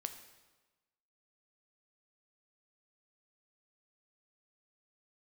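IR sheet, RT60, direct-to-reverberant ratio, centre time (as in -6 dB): 1.2 s, 7.0 dB, 16 ms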